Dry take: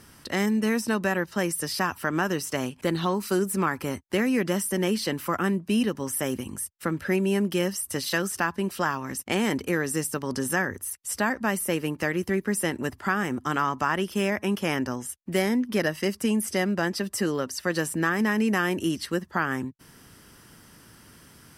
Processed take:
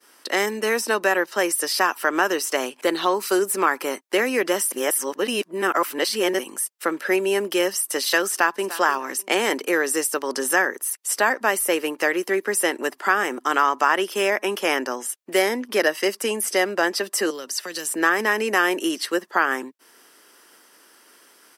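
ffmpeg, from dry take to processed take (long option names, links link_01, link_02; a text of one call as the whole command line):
ffmpeg -i in.wav -filter_complex "[0:a]asplit=2[link_01][link_02];[link_02]afade=type=in:start_time=8.28:duration=0.01,afade=type=out:start_time=8.7:duration=0.01,aecho=0:1:300|600|900:0.16788|0.0419701|0.0104925[link_03];[link_01][link_03]amix=inputs=2:normalize=0,asettb=1/sr,asplit=3[link_04][link_05][link_06];[link_04]atrim=end=17.304[link_07];[link_05]atrim=start=17.3:end=17.92,asetpts=PTS-STARTPTS,afade=type=in:duration=0.004:curve=qsin,afade=type=out:start_time=0.616:duration=0.004:curve=qsin,acrossover=split=200|3000[link_08][link_09][link_10];[link_09]acompressor=threshold=-39dB:ratio=6:attack=3.2:release=140:knee=2.83:detection=peak[link_11];[link_08][link_11][link_10]amix=inputs=3:normalize=0[link_12];[link_06]atrim=start=17.916[link_13];[link_07][link_12]acrossfade=duration=0.004:curve1=hsin:curve2=qsin[link_14];[link_14][link_13]acrossfade=duration=0.004:curve1=qsin:curve2=hsin,asplit=3[link_15][link_16][link_17];[link_15]atrim=end=4.722[link_18];[link_16]atrim=start=4.718:end=6.392,asetpts=PTS-STARTPTS,areverse[link_19];[link_17]atrim=start=6.388[link_20];[link_18][link_19]acrossfade=duration=0.004:curve1=hsin:curve2=hsin[link_21];[link_21][link_20]acrossfade=duration=0.004:curve1=hsin:curve2=hsin,highpass=frequency=350:width=0.5412,highpass=frequency=350:width=1.3066,agate=range=-33dB:threshold=-48dB:ratio=3:detection=peak,volume=7dB" out.wav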